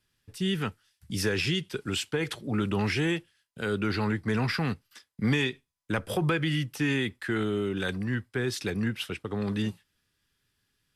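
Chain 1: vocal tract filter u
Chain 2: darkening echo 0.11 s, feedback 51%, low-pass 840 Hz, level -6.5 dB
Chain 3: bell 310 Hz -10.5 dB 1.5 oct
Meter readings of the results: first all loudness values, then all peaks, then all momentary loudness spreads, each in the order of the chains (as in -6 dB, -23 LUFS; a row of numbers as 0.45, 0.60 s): -38.5, -29.0, -33.0 LUFS; -22.0, -13.0, -16.0 dBFS; 9, 7, 7 LU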